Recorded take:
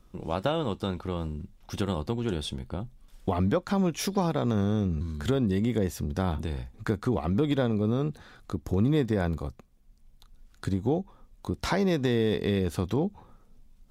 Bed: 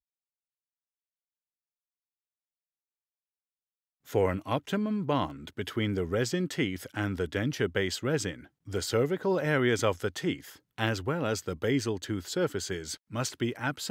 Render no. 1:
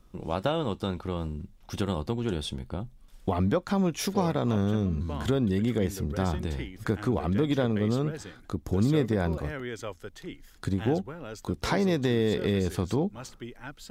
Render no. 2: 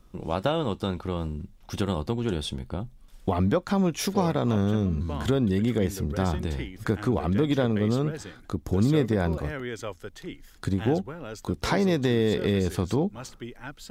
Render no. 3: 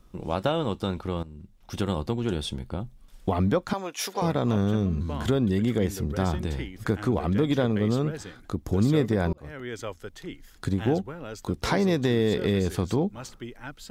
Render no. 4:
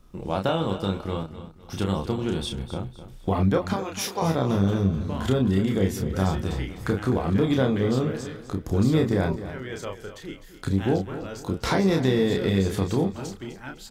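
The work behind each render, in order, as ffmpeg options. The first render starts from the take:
-filter_complex "[1:a]volume=0.299[s0];[0:a][s0]amix=inputs=2:normalize=0"
-af "volume=1.26"
-filter_complex "[0:a]asettb=1/sr,asplit=3[s0][s1][s2];[s0]atrim=end=3.734[s3];[s1]atrim=start=3.73:end=4.22,asetpts=PTS-STARTPTS,afade=t=in:d=0.004:c=qsin,afade=t=out:st=0.486:d=0.004:c=qsin,highpass=580[s4];[s2]atrim=start=4.216[s5];[s3][s4]acrossfade=d=0.004:c1=hsin:c2=qsin[s6];[s6][s5]acrossfade=d=0.004:c1=qsin:c2=hsin,asplit=3[s7][s8][s9];[s7]atrim=end=1.23,asetpts=PTS-STARTPTS,afade=t=out:st=1.226:d=0.004:c=hsin:silence=0.16788[s10];[s8]atrim=start=1.23:end=9.33,asetpts=PTS-STARTPTS,afade=t=in:d=0.64:silence=0.16788,afade=t=out:st=8.096:d=0.004:c=hsin[s11];[s9]atrim=start=9.33,asetpts=PTS-STARTPTS,afade=t=in:d=0.42[s12];[s10][s11][s12]concat=n=3:v=0:a=1"
-filter_complex "[0:a]asplit=2[s0][s1];[s1]adelay=31,volume=0.631[s2];[s0][s2]amix=inputs=2:normalize=0,aecho=1:1:253|506|759:0.224|0.0784|0.0274"

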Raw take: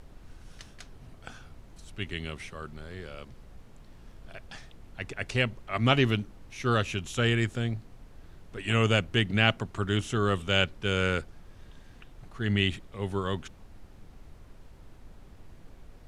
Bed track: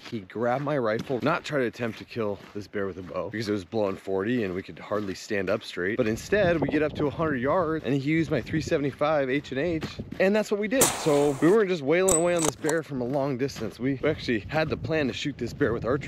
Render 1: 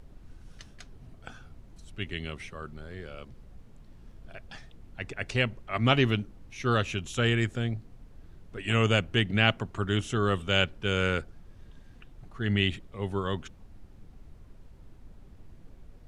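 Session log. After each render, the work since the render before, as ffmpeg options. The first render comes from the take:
-af "afftdn=nr=6:nf=-52"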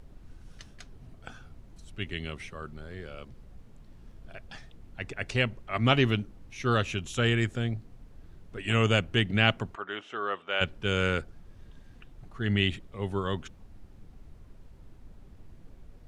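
-filter_complex "[0:a]asplit=3[s0][s1][s2];[s0]afade=t=out:st=9.74:d=0.02[s3];[s1]highpass=600,lowpass=2200,afade=t=in:st=9.74:d=0.02,afade=t=out:st=10.6:d=0.02[s4];[s2]afade=t=in:st=10.6:d=0.02[s5];[s3][s4][s5]amix=inputs=3:normalize=0"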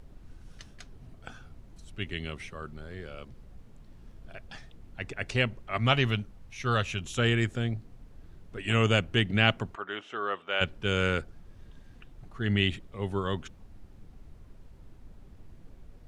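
-filter_complex "[0:a]asettb=1/sr,asplit=3[s0][s1][s2];[s0]atrim=end=5.784[s3];[s1]atrim=start=5.78:end=7.01,asetpts=PTS-STARTPTS,afade=t=in:d=0.004:c=qsin,afade=t=out:st=1.226:d=0.004:c=qsin,equalizer=f=310:w=1.5:g=-7.5[s4];[s2]atrim=start=7.006[s5];[s3][s4]acrossfade=d=0.004:c1=hsin:c2=qsin[s6];[s6][s5]acrossfade=d=0.004:c1=qsin:c2=hsin"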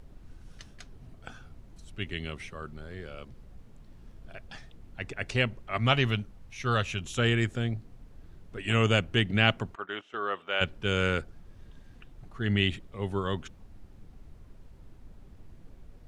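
-filter_complex "[0:a]asplit=3[s0][s1][s2];[s0]afade=t=out:st=9.74:d=0.02[s3];[s1]agate=range=0.355:threshold=0.00708:ratio=16:release=100:detection=peak,afade=t=in:st=9.74:d=0.02,afade=t=out:st=10.31:d=0.02[s4];[s2]afade=t=in:st=10.31:d=0.02[s5];[s3][s4][s5]amix=inputs=3:normalize=0"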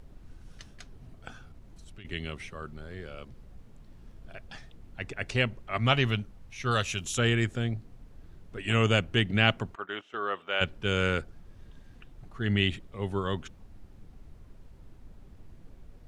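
-filter_complex "[0:a]asettb=1/sr,asplit=3[s0][s1][s2];[s0]atrim=end=1.384[s3];[s1]atrim=start=1.38:end=2.05,asetpts=PTS-STARTPTS,afade=t=in:d=0.004:c=qsin,afade=t=out:st=0.666:d=0.004:c=qsin,acompressor=threshold=0.00708:ratio=10:attack=3.2:release=140:knee=1:detection=peak[s4];[s2]atrim=start=2.046[s5];[s3][s4]acrossfade=d=0.004:c1=hsin:c2=qsin[s6];[s6][s5]acrossfade=d=0.004:c1=qsin:c2=hsin,asettb=1/sr,asplit=3[s7][s8][s9];[s7]atrim=end=6.714[s10];[s8]atrim=start=6.71:end=7.18,asetpts=PTS-STARTPTS,afade=t=in:d=0.004:c=qsin,afade=t=out:st=0.466:d=0.004:c=qsin,bass=f=250:g=-2,treble=f=4000:g=9[s11];[s9]atrim=start=7.176[s12];[s10][s11]acrossfade=d=0.004:c1=hsin:c2=qsin[s13];[s13][s12]acrossfade=d=0.004:c1=qsin:c2=hsin"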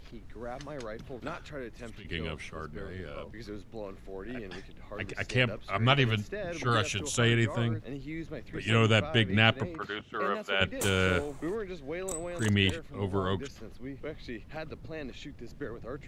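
-filter_complex "[1:a]volume=0.188[s0];[0:a][s0]amix=inputs=2:normalize=0"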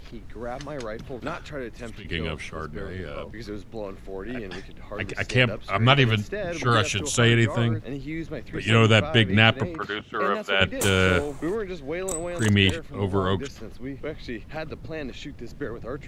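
-af "volume=2.11,alimiter=limit=0.794:level=0:latency=1"

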